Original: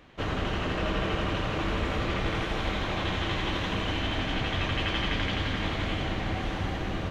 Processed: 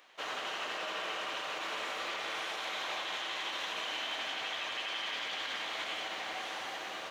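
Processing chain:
Chebyshev high-pass filter 720 Hz, order 2
high-shelf EQ 3,800 Hz +11 dB
brickwall limiter −23.5 dBFS, peak gain reduction 7 dB
level −4.5 dB

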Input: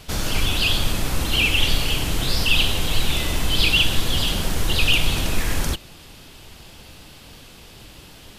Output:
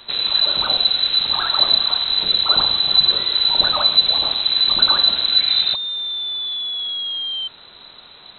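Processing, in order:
loose part that buzzes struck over −25 dBFS, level −22 dBFS
dynamic equaliser 2,700 Hz, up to −6 dB, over −33 dBFS, Q 0.89
sound drawn into the spectrogram rise, 0:05.49–0:07.48, 320–900 Hz −25 dBFS
voice inversion scrambler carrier 4,000 Hz

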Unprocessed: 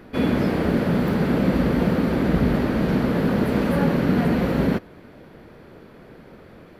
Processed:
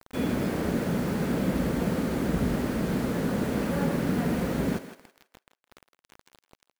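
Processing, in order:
bit reduction 6 bits
feedback echo with a high-pass in the loop 163 ms, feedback 30%, high-pass 440 Hz, level −10.5 dB
level −7 dB

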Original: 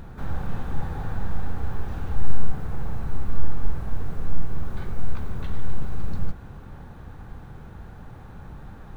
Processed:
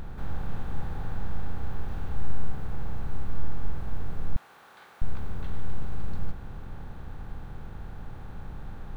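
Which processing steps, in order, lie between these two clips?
compressor on every frequency bin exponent 0.6
0:04.36–0:05.02: Bessel high-pass filter 1,000 Hz, order 2
level −7.5 dB

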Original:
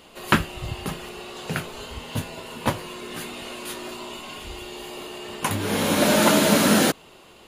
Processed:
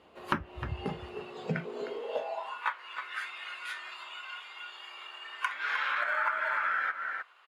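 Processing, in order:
treble cut that deepens with the level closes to 2,000 Hz, closed at −15.5 dBFS
in parallel at −9 dB: decimation without filtering 12×
on the sum: high-shelf EQ 4,200 Hz −8.5 dB
on a send: single-tap delay 308 ms −10.5 dB
on the sum: high-pass filter sweep 69 Hz → 1,400 Hz, 0:01.08–0:02.69
bass and treble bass −9 dB, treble −10 dB
downward compressor 5 to 1, threshold −27 dBFS, peak gain reduction 13 dB
noise reduction from a noise print of the clip's start 9 dB

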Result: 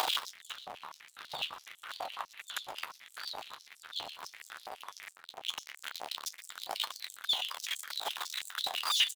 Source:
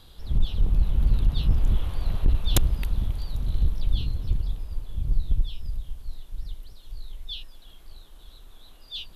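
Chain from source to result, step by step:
converter with a step at zero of −28 dBFS
high-shelf EQ 3,900 Hz −8.5 dB
in parallel at −2 dB: upward compression, threshold −24 dBFS
on the sum: brickwall limiter −17 dBFS, peak gain reduction 11 dB
0:05.09–0:06.50: gain into a clipping stage and back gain 29.5 dB
flanger 0.43 Hz, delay 9.2 ms, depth 4.4 ms, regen −56%
sample-and-hold tremolo
single-tap delay 120 ms −15.5 dB
high-pass on a step sequencer 12 Hz 760–7,700 Hz
level +4 dB

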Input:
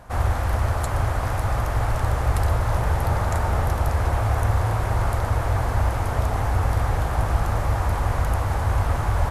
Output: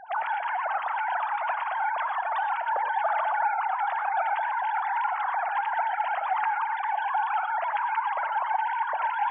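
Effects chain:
three sine waves on the formant tracks
reverb reduction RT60 0.51 s
reverb whose tail is shaped and stops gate 140 ms rising, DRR 8 dB
level −6 dB

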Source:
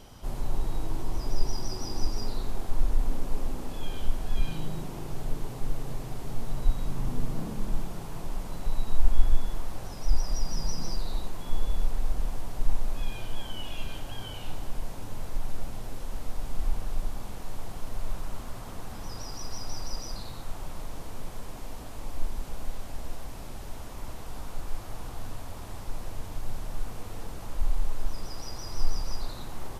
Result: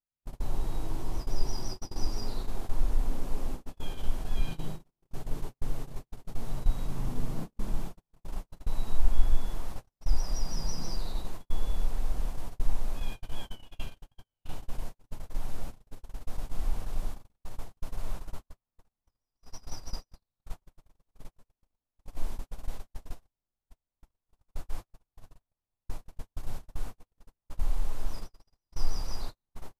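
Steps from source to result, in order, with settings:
noise gate −27 dBFS, range −52 dB
level −2 dB

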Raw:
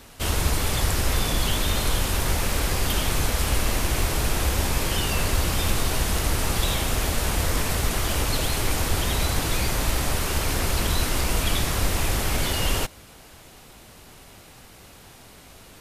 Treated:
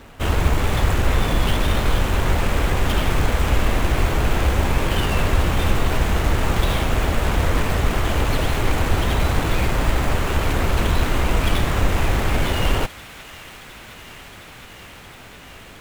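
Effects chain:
running median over 9 samples
delay with a high-pass on its return 714 ms, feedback 85%, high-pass 1,500 Hz, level −16 dB
level +5.5 dB

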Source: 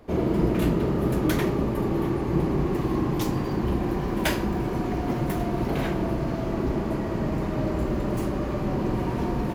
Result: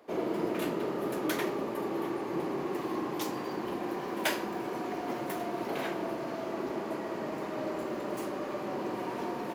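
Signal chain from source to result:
high-pass filter 370 Hz 12 dB per octave
level −3.5 dB

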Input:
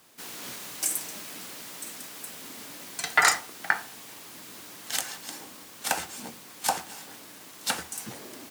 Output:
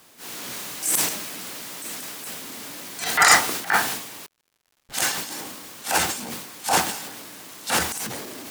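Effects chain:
0:04.26–0:04.94: comparator with hysteresis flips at −33 dBFS
transient designer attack −9 dB, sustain +12 dB
surface crackle 170 per second −56 dBFS
level +5.5 dB

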